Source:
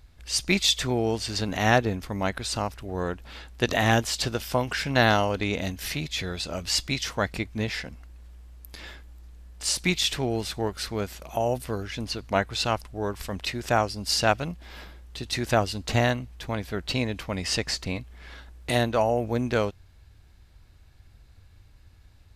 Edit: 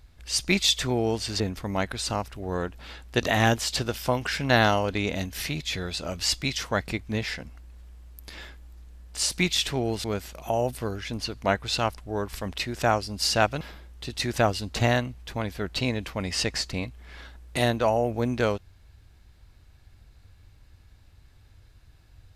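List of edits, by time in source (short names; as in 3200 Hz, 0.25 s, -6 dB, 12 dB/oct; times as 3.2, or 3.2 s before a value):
1.4–1.86 cut
10.5–10.91 cut
14.48–14.74 cut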